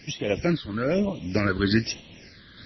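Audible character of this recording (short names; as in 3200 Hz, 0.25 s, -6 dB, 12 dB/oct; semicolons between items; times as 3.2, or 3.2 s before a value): a quantiser's noise floor 8-bit, dither triangular; phasing stages 8, 1.1 Hz, lowest notch 750–1500 Hz; random-step tremolo; MP3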